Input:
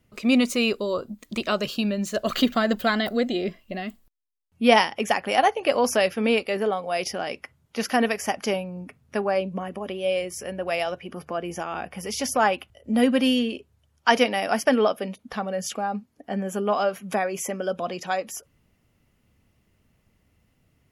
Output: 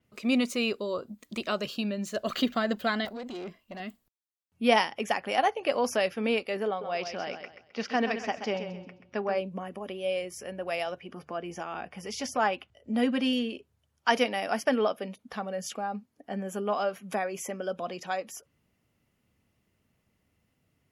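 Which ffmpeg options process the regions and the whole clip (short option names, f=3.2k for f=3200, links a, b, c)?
-filter_complex "[0:a]asettb=1/sr,asplit=3[a][b][c];[a]atrim=end=3.054[d];[b]atrim=start=3.05:end=3.8,asetpts=PTS-STARTPTS,afade=t=in:d=0.004:c=qsin,afade=t=out:st=0.746:d=0.004:c=qsin,equalizer=f=1k:w=5.5:g=5,acompressor=threshold=-23dB:ratio=5:attack=3.2:release=140:knee=1:detection=peak,aeval=exprs='(tanh(25.1*val(0)+0.5)-tanh(0.5))/25.1':c=same[e];[c]atrim=start=3.796[f];[d][e]acrossfade=d=0.004:c1=hsin:c2=qsin[g];[g][f]acrossfade=d=0.004:c1=qsin:c2=hsin,asettb=1/sr,asplit=3[h][i][j];[h]atrim=end=6.684[k];[i]atrim=start=6.68:end=9.38,asetpts=PTS-STARTPTS,afade=t=in:d=0.004:c=qsin,afade=t=out:st=2.696:d=0.004:c=qsin,lowpass=f=5.4k:w=0.5412,lowpass=f=5.4k:w=1.3066,aecho=1:1:131|262|393|524:0.355|0.117|0.0386|0.0128,atrim=end_sample=119070[l];[j]atrim=start=9.376[m];[k][l]acrossfade=d=0.004:c1=hsin:c2=qsin[n];[n][m]acrossfade=d=0.004:c1=qsin:c2=hsin,asettb=1/sr,asplit=3[o][p][q];[o]atrim=end=11.014[r];[p]atrim=start=11.01:end=13.33,asetpts=PTS-STARTPTS,afade=t=in:d=0.004:c=qsin,afade=t=out:st=2.316:d=0.004:c=qsin,lowpass=7.8k,bandreject=f=530:w=17[s];[q]atrim=start=13.326[t];[r][s]acrossfade=d=0.004:c1=hsin:c2=qsin[u];[u][t]acrossfade=d=0.004:c1=qsin:c2=hsin,highpass=f=99:p=1,adynamicequalizer=threshold=0.00562:dfrequency=6800:dqfactor=0.7:tfrequency=6800:tqfactor=0.7:attack=5:release=100:ratio=0.375:range=3:mode=cutabove:tftype=highshelf,volume=-5.5dB"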